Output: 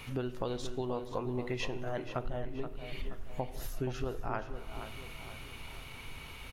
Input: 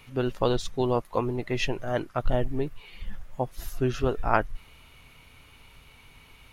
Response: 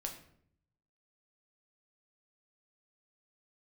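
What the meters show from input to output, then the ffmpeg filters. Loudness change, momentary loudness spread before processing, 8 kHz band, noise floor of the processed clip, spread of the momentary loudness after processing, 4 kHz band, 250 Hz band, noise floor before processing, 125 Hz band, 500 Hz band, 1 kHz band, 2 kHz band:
-11.0 dB, 15 LU, -6.0 dB, -47 dBFS, 10 LU, -7.0 dB, -8.5 dB, -54 dBFS, -8.0 dB, -9.5 dB, -10.5 dB, -8.5 dB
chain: -filter_complex "[0:a]asplit=2[a][b];[1:a]atrim=start_sample=2205,asetrate=25578,aresample=44100[c];[b][c]afir=irnorm=-1:irlink=0,volume=-11dB[d];[a][d]amix=inputs=2:normalize=0,acompressor=threshold=-38dB:ratio=5,asplit=2[e][f];[f]adelay=477,lowpass=f=4.3k:p=1,volume=-9.5dB,asplit=2[g][h];[h]adelay=477,lowpass=f=4.3k:p=1,volume=0.5,asplit=2[i][j];[j]adelay=477,lowpass=f=4.3k:p=1,volume=0.5,asplit=2[k][l];[l]adelay=477,lowpass=f=4.3k:p=1,volume=0.5,asplit=2[m][n];[n]adelay=477,lowpass=f=4.3k:p=1,volume=0.5,asplit=2[o][p];[p]adelay=477,lowpass=f=4.3k:p=1,volume=0.5[q];[e][g][i][k][m][o][q]amix=inputs=7:normalize=0,volume=3.5dB"

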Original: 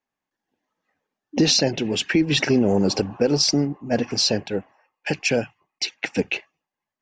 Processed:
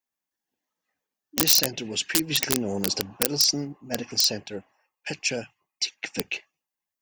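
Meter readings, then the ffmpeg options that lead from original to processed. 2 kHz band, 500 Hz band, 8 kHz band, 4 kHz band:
-5.0 dB, -10.0 dB, +2.0 dB, -1.5 dB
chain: -af "aeval=exprs='(mod(2.99*val(0)+1,2)-1)/2.99':c=same,crystalizer=i=3.5:c=0,volume=-10dB"

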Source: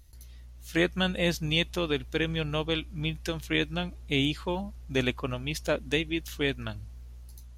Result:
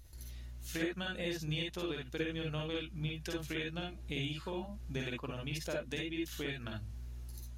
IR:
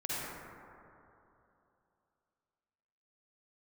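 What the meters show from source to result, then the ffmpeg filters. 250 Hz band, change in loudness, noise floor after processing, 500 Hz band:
-9.0 dB, -10.0 dB, -49 dBFS, -10.0 dB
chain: -filter_complex "[0:a]acompressor=threshold=-41dB:ratio=3[a];[1:a]atrim=start_sample=2205,atrim=end_sample=3087[b];[a][b]afir=irnorm=-1:irlink=0,volume=3dB"

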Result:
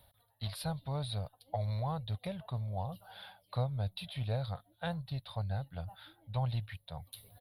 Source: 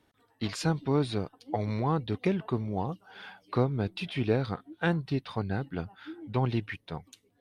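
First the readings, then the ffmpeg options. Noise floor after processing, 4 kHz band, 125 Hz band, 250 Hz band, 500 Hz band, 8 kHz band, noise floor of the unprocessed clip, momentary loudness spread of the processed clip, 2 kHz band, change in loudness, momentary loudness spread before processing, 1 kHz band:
-73 dBFS, -3.5 dB, -4.0 dB, -13.5 dB, -11.0 dB, n/a, -71 dBFS, 12 LU, -12.0 dB, -7.5 dB, 12 LU, -7.0 dB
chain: -af "firequalizer=gain_entry='entry(100,0);entry(260,-23);entry(370,-28);entry(570,-2);entry(840,-7);entry(1200,-12);entry(2500,-13);entry(3900,0);entry(6700,-29);entry(10000,7)':delay=0.05:min_phase=1,areverse,acompressor=mode=upward:threshold=-41dB:ratio=2.5,areverse"

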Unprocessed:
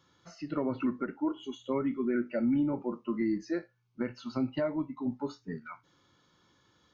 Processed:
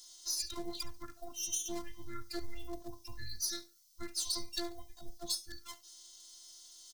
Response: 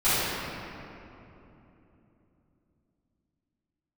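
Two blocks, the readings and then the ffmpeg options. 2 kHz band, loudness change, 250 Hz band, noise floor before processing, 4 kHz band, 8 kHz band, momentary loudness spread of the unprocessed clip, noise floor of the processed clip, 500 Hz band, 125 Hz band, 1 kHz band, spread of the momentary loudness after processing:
-7.5 dB, -6.0 dB, -18.0 dB, -69 dBFS, +13.5 dB, n/a, 12 LU, -62 dBFS, -14.0 dB, -12.0 dB, -8.5 dB, 17 LU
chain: -af "highpass=94,highshelf=f=2.3k:g=11.5,afreqshift=-190,afftfilt=real='hypot(re,im)*cos(PI*b)':imag='0':win_size=512:overlap=0.75,aeval=exprs='max(val(0),0)':c=same,aexciter=amount=15.2:drive=4.4:freq=3.8k,aecho=1:1:70|140:0.112|0.0292,volume=-5dB"

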